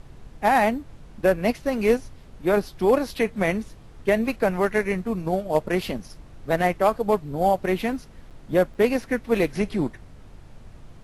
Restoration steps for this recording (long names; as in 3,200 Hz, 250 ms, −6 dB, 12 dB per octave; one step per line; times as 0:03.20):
clipped peaks rebuilt −9.5 dBFS
hum removal 48.3 Hz, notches 3
repair the gap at 0:08.30/0:08.74, 7.6 ms
noise reduction from a noise print 22 dB